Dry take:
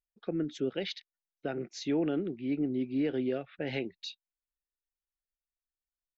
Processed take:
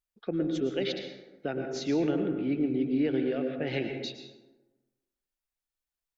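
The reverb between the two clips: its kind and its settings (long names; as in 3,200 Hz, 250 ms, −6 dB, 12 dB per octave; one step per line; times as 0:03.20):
dense smooth reverb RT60 1.2 s, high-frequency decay 0.45×, pre-delay 95 ms, DRR 4.5 dB
level +2 dB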